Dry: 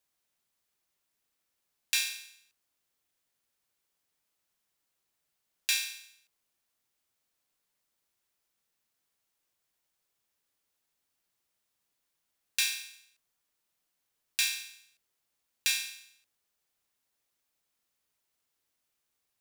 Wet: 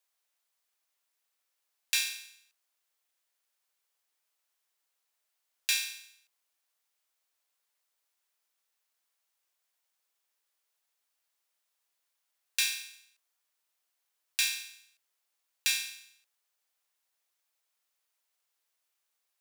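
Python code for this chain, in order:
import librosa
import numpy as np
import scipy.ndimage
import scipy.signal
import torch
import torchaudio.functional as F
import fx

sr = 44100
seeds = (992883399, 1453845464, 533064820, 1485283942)

y = scipy.signal.sosfilt(scipy.signal.butter(2, 560.0, 'highpass', fs=sr, output='sos'), x)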